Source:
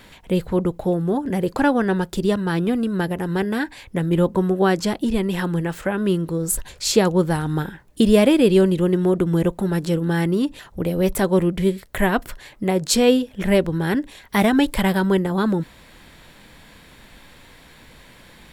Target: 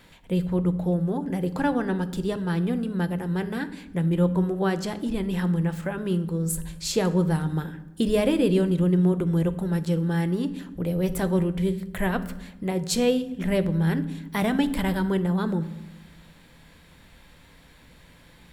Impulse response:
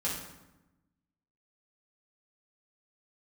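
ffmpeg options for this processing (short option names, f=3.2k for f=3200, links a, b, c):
-filter_complex "[0:a]asplit=2[a][b];[1:a]atrim=start_sample=2205,lowshelf=f=200:g=11[c];[b][c]afir=irnorm=-1:irlink=0,volume=-15dB[d];[a][d]amix=inputs=2:normalize=0,volume=-8.5dB"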